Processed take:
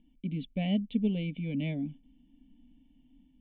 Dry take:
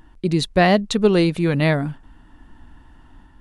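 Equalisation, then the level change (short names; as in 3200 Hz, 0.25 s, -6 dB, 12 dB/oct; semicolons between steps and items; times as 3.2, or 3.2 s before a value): vocal tract filter i; low shelf 400 Hz -6 dB; fixed phaser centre 350 Hz, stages 6; +3.0 dB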